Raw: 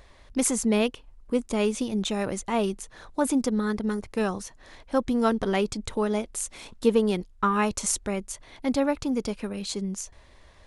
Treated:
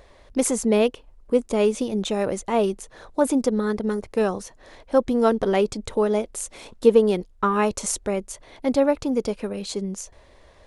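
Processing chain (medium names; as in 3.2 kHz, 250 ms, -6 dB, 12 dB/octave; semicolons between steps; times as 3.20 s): peaking EQ 510 Hz +7.5 dB 1.3 oct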